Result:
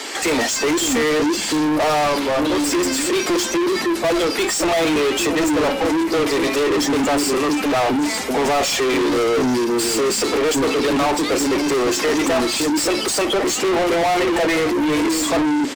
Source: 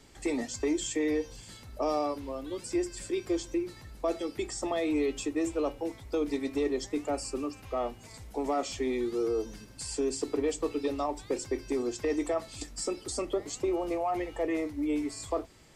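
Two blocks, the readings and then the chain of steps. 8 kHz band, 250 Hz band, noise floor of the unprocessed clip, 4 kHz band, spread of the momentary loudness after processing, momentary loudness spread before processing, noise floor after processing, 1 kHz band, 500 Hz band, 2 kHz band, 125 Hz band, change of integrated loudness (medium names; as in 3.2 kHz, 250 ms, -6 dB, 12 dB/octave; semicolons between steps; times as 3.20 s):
+17.0 dB, +13.5 dB, -51 dBFS, +21.0 dB, 2 LU, 7 LU, -24 dBFS, +16.0 dB, +12.5 dB, +21.0 dB, +14.0 dB, +14.5 dB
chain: coarse spectral quantiser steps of 15 dB; resonant low shelf 160 Hz -10 dB, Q 3; bands offset in time highs, lows 560 ms, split 320 Hz; overdrive pedal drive 36 dB, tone 5.7 kHz, clips at -16.5 dBFS; trim +5 dB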